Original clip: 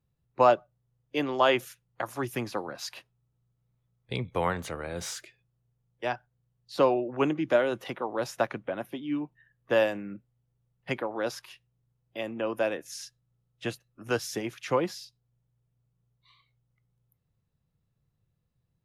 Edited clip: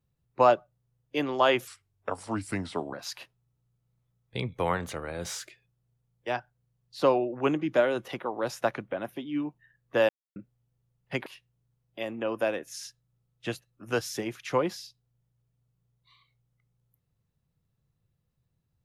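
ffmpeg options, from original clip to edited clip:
-filter_complex "[0:a]asplit=6[s0][s1][s2][s3][s4][s5];[s0]atrim=end=1.674[s6];[s1]atrim=start=1.67:end=2.69,asetpts=PTS-STARTPTS,asetrate=35721,aresample=44100,atrim=end_sample=55533,asetpts=PTS-STARTPTS[s7];[s2]atrim=start=2.686:end=9.85,asetpts=PTS-STARTPTS,afade=t=out:st=7.16:d=0.004:c=hsin[s8];[s3]atrim=start=9.85:end=10.12,asetpts=PTS-STARTPTS,volume=0[s9];[s4]atrim=start=10.12:end=11.022,asetpts=PTS-STARTPTS,afade=t=in:d=0.004:c=hsin[s10];[s5]atrim=start=11.438[s11];[s6][s7]acrossfade=d=0.004:c1=hsin:c2=hsin[s12];[s8][s9][s10]concat=n=3:v=0:a=1[s13];[s12][s13]acrossfade=d=0.004:c1=hsin:c2=hsin[s14];[s14][s11]acrossfade=d=0.004:c1=hsin:c2=hsin"

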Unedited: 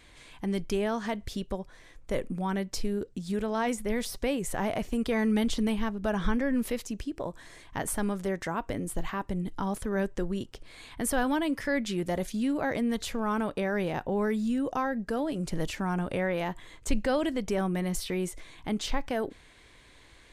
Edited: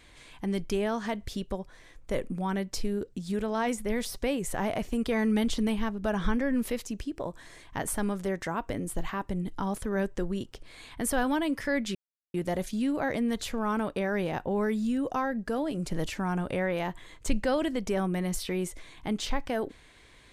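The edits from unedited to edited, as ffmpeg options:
-filter_complex "[0:a]asplit=2[s0][s1];[s0]atrim=end=11.95,asetpts=PTS-STARTPTS,afade=t=out:st=11.946:d=0.004:c=hsin,apad=pad_dur=0.39[s2];[s1]atrim=start=11.95,asetpts=PTS-STARTPTS,afade=t=in:d=0.004:c=hsin[s3];[s2][s3]concat=n=2:v=0:a=1"

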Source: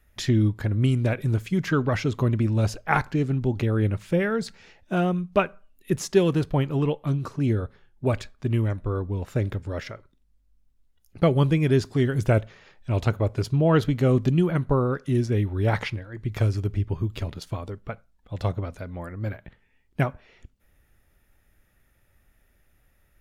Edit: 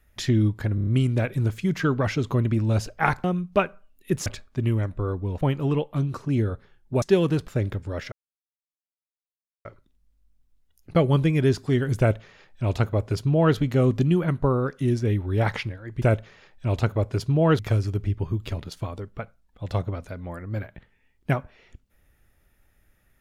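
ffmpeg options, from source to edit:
-filter_complex "[0:a]asplit=13[s0][s1][s2][s3][s4][s5][s6][s7][s8][s9][s10][s11][s12];[s0]atrim=end=0.782[s13];[s1]atrim=start=0.748:end=0.782[s14];[s2]atrim=start=0.748:end=0.782[s15];[s3]atrim=start=0.748:end=0.782[s16];[s4]atrim=start=0.748:end=3.122[s17];[s5]atrim=start=5.038:end=6.062[s18];[s6]atrim=start=8.128:end=9.282[s19];[s7]atrim=start=6.518:end=8.132[s20];[s8]atrim=start=6.058:end=6.522[s21];[s9]atrim=start=9.278:end=9.92,asetpts=PTS-STARTPTS,afade=t=out:st=0.638:d=0.004:c=hsin,apad=pad_dur=1.53[s22];[s10]atrim=start=9.92:end=16.292,asetpts=PTS-STARTPTS,afade=t=in:d=0.004:c=hsin[s23];[s11]atrim=start=12.258:end=13.832[s24];[s12]atrim=start=16.288[s25];[s13][s14]acrossfade=d=0.004:c1=hsin:c2=hsin[s26];[s26][s15]acrossfade=d=0.004:c1=hsin:c2=hsin[s27];[s27][s16]acrossfade=d=0.004:c1=hsin:c2=hsin[s28];[s28][s17]acrossfade=d=0.004:c1=hsin:c2=hsin[s29];[s29][s18]acrossfade=d=0.004:c1=hsin:c2=hsin[s30];[s30][s19]acrossfade=d=0.004:c1=hsin:c2=hsin[s31];[s31][s20]acrossfade=d=0.004:c1=hsin:c2=hsin[s32];[s32][s21]acrossfade=d=0.004:c1=hsin:c2=hsin[s33];[s22][s23]concat=n=2:v=0:a=1[s34];[s33][s34]acrossfade=d=0.004:c1=hsin:c2=hsin[s35];[s35][s24]acrossfade=d=0.004:c1=hsin:c2=hsin[s36];[s36][s25]acrossfade=d=0.004:c1=hsin:c2=hsin"

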